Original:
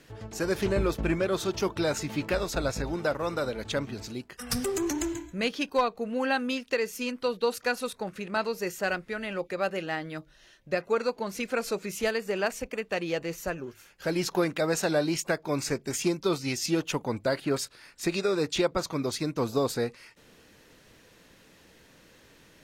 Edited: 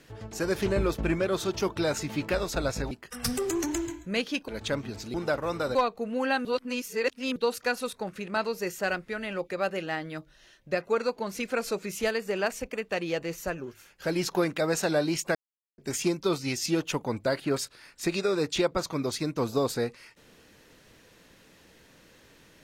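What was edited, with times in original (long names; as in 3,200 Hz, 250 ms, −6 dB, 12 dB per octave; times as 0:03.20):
0:02.91–0:03.52: swap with 0:04.18–0:05.75
0:06.45–0:07.36: reverse
0:15.35–0:15.78: silence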